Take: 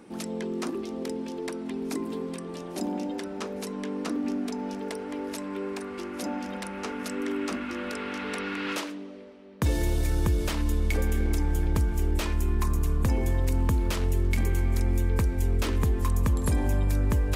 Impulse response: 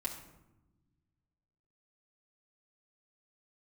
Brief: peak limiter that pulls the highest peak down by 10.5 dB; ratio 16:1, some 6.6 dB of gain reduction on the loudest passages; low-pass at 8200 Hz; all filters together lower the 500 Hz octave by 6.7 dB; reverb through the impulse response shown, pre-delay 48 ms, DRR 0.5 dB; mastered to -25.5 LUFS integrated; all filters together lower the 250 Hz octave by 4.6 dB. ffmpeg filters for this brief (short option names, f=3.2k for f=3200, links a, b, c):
-filter_complex "[0:a]lowpass=8.2k,equalizer=f=250:t=o:g=-3.5,equalizer=f=500:t=o:g=-7.5,acompressor=threshold=-27dB:ratio=16,alimiter=level_in=4dB:limit=-24dB:level=0:latency=1,volume=-4dB,asplit=2[a][b];[1:a]atrim=start_sample=2205,adelay=48[c];[b][c]afir=irnorm=-1:irlink=0,volume=-1.5dB[d];[a][d]amix=inputs=2:normalize=0,volume=7.5dB"